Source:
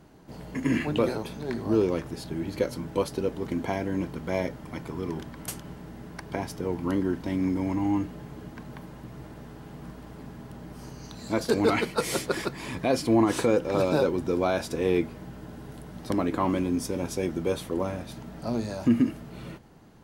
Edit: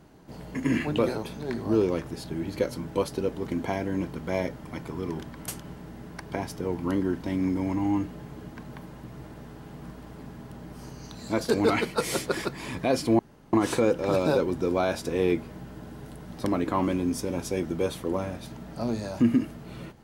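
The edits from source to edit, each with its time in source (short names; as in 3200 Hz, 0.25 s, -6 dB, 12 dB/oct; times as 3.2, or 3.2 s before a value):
13.19 insert room tone 0.34 s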